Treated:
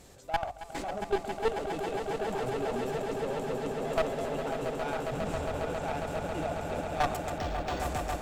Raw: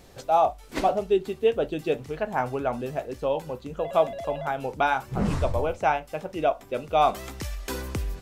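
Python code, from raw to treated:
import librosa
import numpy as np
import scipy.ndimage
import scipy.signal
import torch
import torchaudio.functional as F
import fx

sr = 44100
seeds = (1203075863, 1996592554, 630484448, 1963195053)

p1 = fx.peak_eq(x, sr, hz=7600.0, db=8.5, octaves=0.46)
p2 = fx.level_steps(p1, sr, step_db=18)
p3 = fx.clip_asym(p2, sr, top_db=-34.5, bottom_db=-17.5)
p4 = p3 + fx.echo_swell(p3, sr, ms=136, loudest=8, wet_db=-9.0, dry=0)
y = fx.resample_linear(p4, sr, factor=4, at=(7.38, 7.8))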